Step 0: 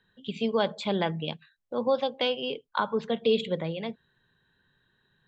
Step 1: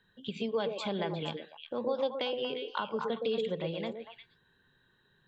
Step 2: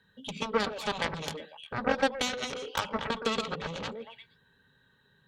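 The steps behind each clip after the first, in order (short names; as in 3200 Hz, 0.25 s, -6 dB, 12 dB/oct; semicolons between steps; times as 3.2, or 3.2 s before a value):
compressor 2:1, threshold -36 dBFS, peak gain reduction 9.5 dB; on a send: delay with a stepping band-pass 0.118 s, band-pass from 400 Hz, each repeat 1.4 oct, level -0.5 dB
added harmonics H 2 -13 dB, 5 -16 dB, 7 -8 dB, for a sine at -17 dBFS; notch comb 350 Hz; gain +4 dB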